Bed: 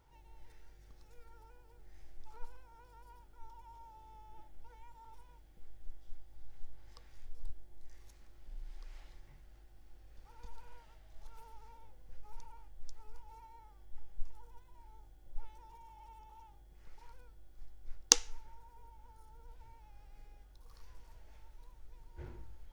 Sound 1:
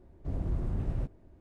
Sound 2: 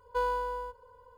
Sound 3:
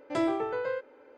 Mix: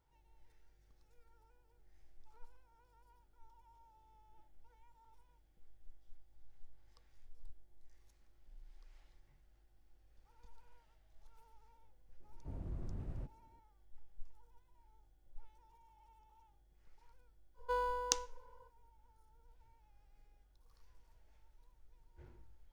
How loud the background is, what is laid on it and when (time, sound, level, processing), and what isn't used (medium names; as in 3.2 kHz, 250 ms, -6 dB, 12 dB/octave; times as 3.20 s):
bed -10.5 dB
12.20 s: add 1 -12 dB
17.54 s: add 2 -6.5 dB, fades 0.05 s
not used: 3